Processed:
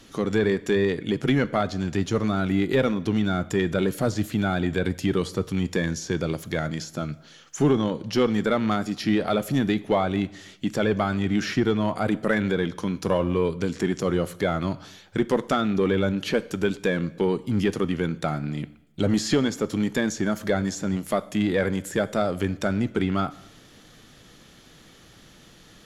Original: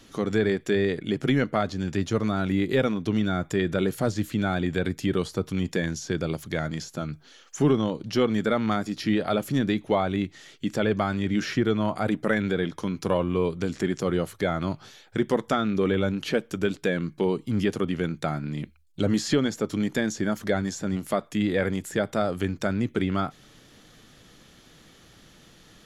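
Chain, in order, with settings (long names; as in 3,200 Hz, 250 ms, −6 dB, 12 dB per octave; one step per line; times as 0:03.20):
in parallel at −6 dB: asymmetric clip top −22.5 dBFS
on the sum: convolution reverb RT60 0.90 s, pre-delay 7 ms, DRR 17 dB
level −1.5 dB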